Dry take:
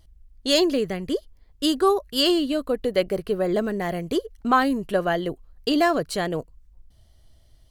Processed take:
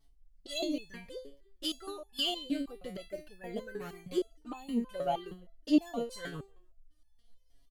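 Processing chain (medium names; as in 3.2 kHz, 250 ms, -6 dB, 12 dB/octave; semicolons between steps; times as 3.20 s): feedback delay 154 ms, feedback 22%, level -24 dB; touch-sensitive flanger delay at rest 4.6 ms, full sweep at -18.5 dBFS; resonator arpeggio 6.4 Hz 140–860 Hz; trim +5 dB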